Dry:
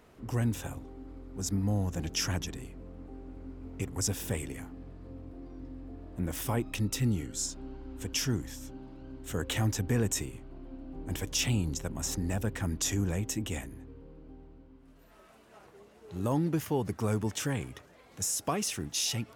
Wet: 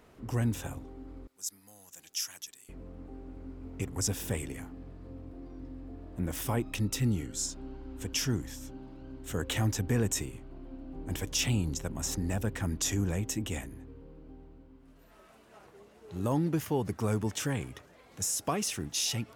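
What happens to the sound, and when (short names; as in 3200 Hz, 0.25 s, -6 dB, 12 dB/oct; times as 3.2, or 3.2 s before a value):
1.27–2.69 differentiator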